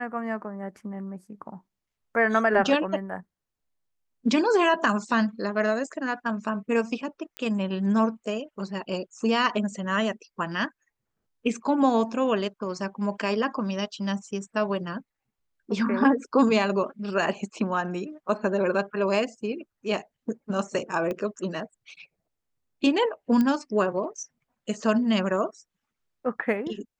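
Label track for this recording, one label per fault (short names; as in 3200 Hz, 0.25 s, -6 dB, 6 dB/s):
7.370000	7.370000	pop -18 dBFS
21.110000	21.110000	pop -19 dBFS
23.410000	23.410000	pop -14 dBFS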